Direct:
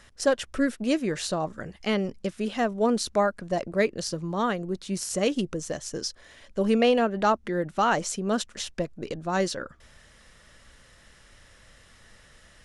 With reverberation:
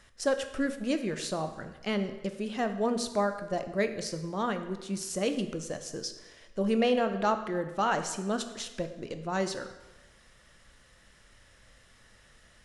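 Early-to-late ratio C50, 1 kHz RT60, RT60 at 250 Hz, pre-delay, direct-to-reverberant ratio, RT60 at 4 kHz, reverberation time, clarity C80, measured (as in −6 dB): 10.5 dB, 1.2 s, 1.2 s, 12 ms, 8.0 dB, 0.95 s, 1.1 s, 12.0 dB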